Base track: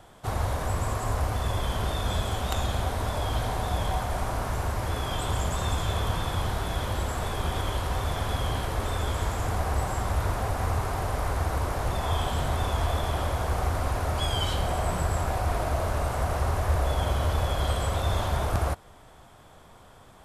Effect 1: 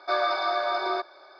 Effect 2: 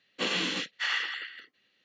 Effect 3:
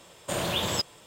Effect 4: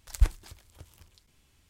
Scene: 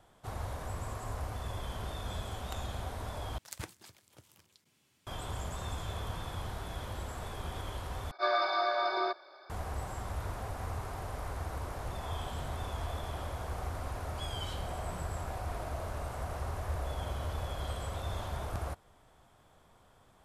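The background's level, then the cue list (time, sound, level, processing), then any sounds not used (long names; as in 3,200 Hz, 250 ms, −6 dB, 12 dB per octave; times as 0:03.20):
base track −11 dB
0:03.38: overwrite with 4 −3.5 dB + high-pass filter 120 Hz 24 dB per octave
0:08.11: overwrite with 1 −4 dB + level that may rise only so fast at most 430 dB per second
not used: 2, 3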